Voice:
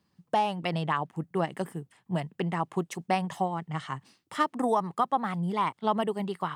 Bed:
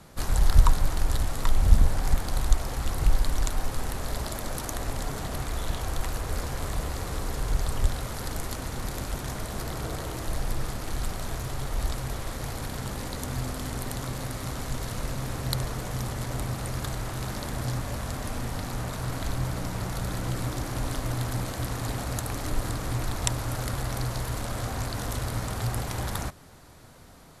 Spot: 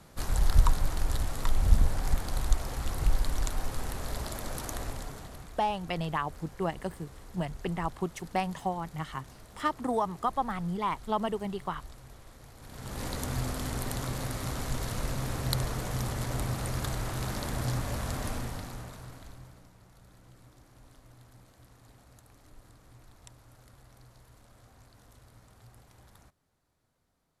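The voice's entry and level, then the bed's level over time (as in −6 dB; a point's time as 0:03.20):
5.25 s, −3.0 dB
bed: 0:04.80 −4 dB
0:05.63 −18 dB
0:12.56 −18 dB
0:13.04 −1 dB
0:18.28 −1 dB
0:19.76 −26 dB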